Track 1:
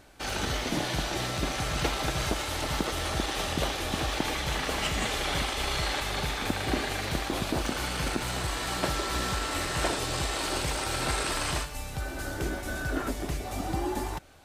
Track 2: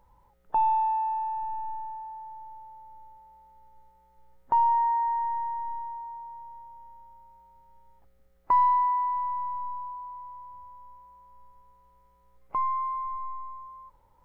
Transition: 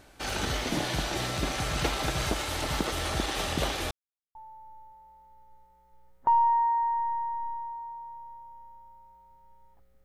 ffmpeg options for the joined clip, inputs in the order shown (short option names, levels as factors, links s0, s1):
-filter_complex "[0:a]apad=whole_dur=10.04,atrim=end=10.04,asplit=2[s0][s1];[s0]atrim=end=3.91,asetpts=PTS-STARTPTS,afade=t=out:st=3.906:d=0.004:c=hsin[s2];[s1]atrim=start=3.91:end=4.35,asetpts=PTS-STARTPTS,volume=0[s3];[1:a]atrim=start=2.6:end=8.29,asetpts=PTS-STARTPTS,afade=t=in:d=0.004:c=hsin[s4];[s2][s3][s4]concat=n=3:v=0:a=1"